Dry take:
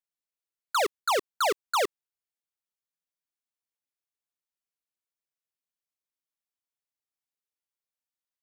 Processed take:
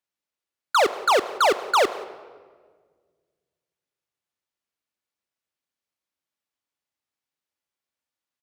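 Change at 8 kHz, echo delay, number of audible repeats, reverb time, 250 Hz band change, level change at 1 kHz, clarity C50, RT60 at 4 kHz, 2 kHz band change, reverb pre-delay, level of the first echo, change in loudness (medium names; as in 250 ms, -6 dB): +2.0 dB, 182 ms, 1, 1.6 s, +7.5 dB, +7.0 dB, 14.0 dB, 1.0 s, +7.0 dB, 3 ms, -23.0 dB, +6.5 dB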